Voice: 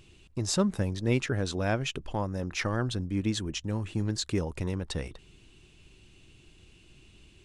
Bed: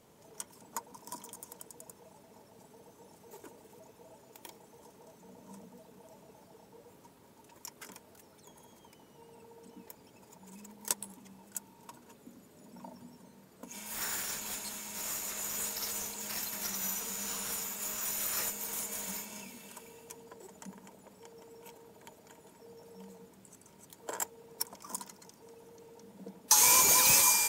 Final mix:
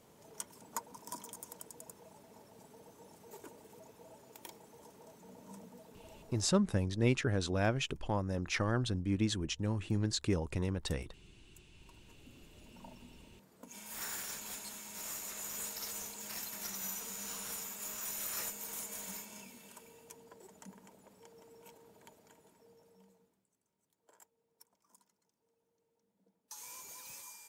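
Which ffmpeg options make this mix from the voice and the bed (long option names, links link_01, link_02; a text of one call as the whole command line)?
ffmpeg -i stem1.wav -i stem2.wav -filter_complex "[0:a]adelay=5950,volume=-3dB[link_01];[1:a]volume=17.5dB,afade=type=out:start_time=6.37:duration=0.22:silence=0.0749894,afade=type=in:start_time=11.72:duration=0.7:silence=0.125893,afade=type=out:start_time=22:duration=1.48:silence=0.0841395[link_02];[link_01][link_02]amix=inputs=2:normalize=0" out.wav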